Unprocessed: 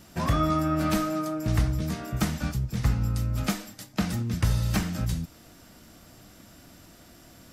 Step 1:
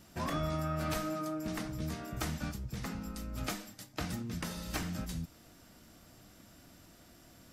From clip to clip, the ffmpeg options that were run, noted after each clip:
ffmpeg -i in.wav -af "afftfilt=real='re*lt(hypot(re,im),0.398)':imag='im*lt(hypot(re,im),0.398)':win_size=1024:overlap=0.75,volume=-6.5dB" out.wav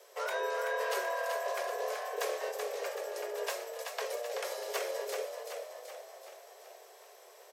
ffmpeg -i in.wav -filter_complex "[0:a]afreqshift=360,asplit=8[link_01][link_02][link_03][link_04][link_05][link_06][link_07][link_08];[link_02]adelay=380,afreqshift=39,volume=-5.5dB[link_09];[link_03]adelay=760,afreqshift=78,volume=-10.5dB[link_10];[link_04]adelay=1140,afreqshift=117,volume=-15.6dB[link_11];[link_05]adelay=1520,afreqshift=156,volume=-20.6dB[link_12];[link_06]adelay=1900,afreqshift=195,volume=-25.6dB[link_13];[link_07]adelay=2280,afreqshift=234,volume=-30.7dB[link_14];[link_08]adelay=2660,afreqshift=273,volume=-35.7dB[link_15];[link_01][link_09][link_10][link_11][link_12][link_13][link_14][link_15]amix=inputs=8:normalize=0" out.wav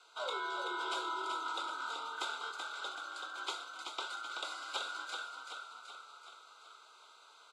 ffmpeg -i in.wav -af "afftfilt=real='real(if(between(b,1,1012),(2*floor((b-1)/92)+1)*92-b,b),0)':imag='imag(if(between(b,1,1012),(2*floor((b-1)/92)+1)*92-b,b),0)*if(between(b,1,1012),-1,1)':win_size=2048:overlap=0.75,highpass=frequency=420:width=0.5412,highpass=frequency=420:width=1.3066,equalizer=frequency=1600:width_type=q:width=4:gain=-10,equalizer=frequency=3700:width_type=q:width=4:gain=6,equalizer=frequency=5700:width_type=q:width=4:gain=-9,lowpass=frequency=7600:width=0.5412,lowpass=frequency=7600:width=1.3066,volume=-1dB" out.wav

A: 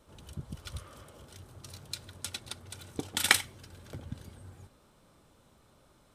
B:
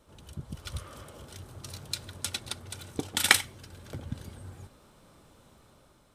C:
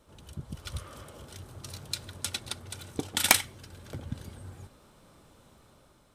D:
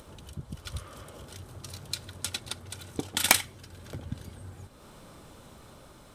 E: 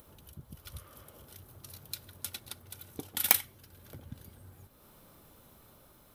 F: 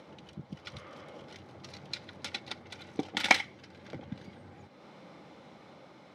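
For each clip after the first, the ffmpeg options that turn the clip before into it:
ffmpeg -i in.wav -af "dynaudnorm=framelen=180:gausssize=7:maxgain=5dB" out.wav
ffmpeg -i in.wav -af "aeval=exprs='(mod(1.68*val(0)+1,2)-1)/1.68':channel_layout=same" out.wav
ffmpeg -i in.wav -af "acompressor=mode=upward:threshold=-41dB:ratio=2.5" out.wav
ffmpeg -i in.wav -af "aexciter=amount=4.9:drive=8:freq=11000,volume=-9dB" out.wav
ffmpeg -i in.wav -af "highpass=frequency=110:width=0.5412,highpass=frequency=110:width=1.3066,equalizer=frequency=110:width_type=q:width=4:gain=-5,equalizer=frequency=190:width_type=q:width=4:gain=5,equalizer=frequency=310:width_type=q:width=4:gain=5,equalizer=frequency=520:width_type=q:width=4:gain=5,equalizer=frequency=790:width_type=q:width=4:gain=7,equalizer=frequency=2100:width_type=q:width=4:gain=9,lowpass=frequency=5500:width=0.5412,lowpass=frequency=5500:width=1.3066,volume=5dB" out.wav

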